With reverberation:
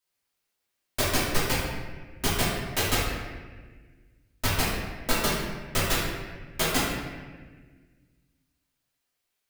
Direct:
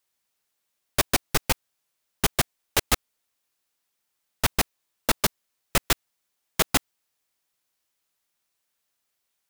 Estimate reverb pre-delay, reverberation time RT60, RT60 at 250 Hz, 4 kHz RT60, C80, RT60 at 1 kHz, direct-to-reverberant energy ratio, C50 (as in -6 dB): 3 ms, 1.4 s, 2.1 s, 1.0 s, 2.0 dB, 1.3 s, -8.5 dB, -1.0 dB